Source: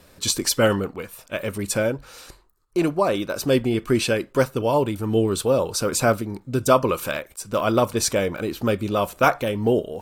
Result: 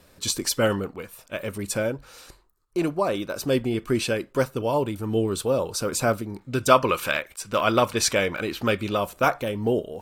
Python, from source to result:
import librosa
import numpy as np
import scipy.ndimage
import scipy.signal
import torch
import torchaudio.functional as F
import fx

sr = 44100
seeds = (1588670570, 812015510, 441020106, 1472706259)

y = fx.peak_eq(x, sr, hz=2300.0, db=9.0, octaves=2.4, at=(6.38, 8.97))
y = y * librosa.db_to_amplitude(-3.5)